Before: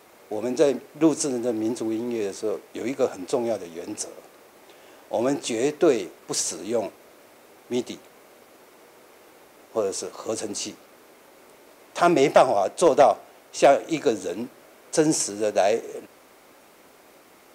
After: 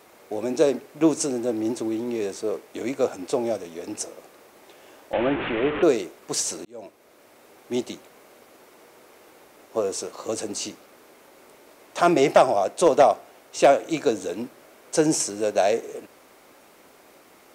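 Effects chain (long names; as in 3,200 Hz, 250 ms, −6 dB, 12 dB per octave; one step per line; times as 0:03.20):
0:05.13–0:05.83: linear delta modulator 16 kbit/s, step −22 dBFS
0:06.65–0:07.72: fade in equal-power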